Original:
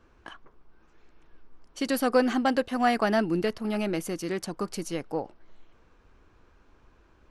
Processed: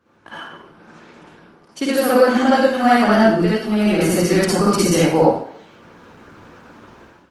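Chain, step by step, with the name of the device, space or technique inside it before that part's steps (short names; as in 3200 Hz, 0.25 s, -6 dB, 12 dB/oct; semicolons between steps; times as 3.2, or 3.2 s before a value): far-field microphone of a smart speaker (reverb RT60 0.60 s, pre-delay 48 ms, DRR -6.5 dB; HPF 98 Hz 24 dB/oct; AGC gain up to 16 dB; gain -1 dB; Opus 20 kbps 48000 Hz)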